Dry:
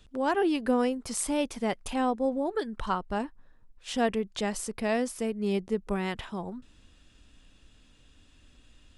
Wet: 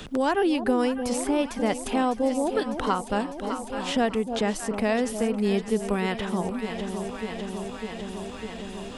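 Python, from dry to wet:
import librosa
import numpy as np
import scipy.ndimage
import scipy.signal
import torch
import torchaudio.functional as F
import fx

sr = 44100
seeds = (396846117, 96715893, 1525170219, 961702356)

y = fx.echo_alternate(x, sr, ms=301, hz=850.0, feedback_pct=78, wet_db=-10.5)
y = fx.band_squash(y, sr, depth_pct=70)
y = y * librosa.db_to_amplitude(3.5)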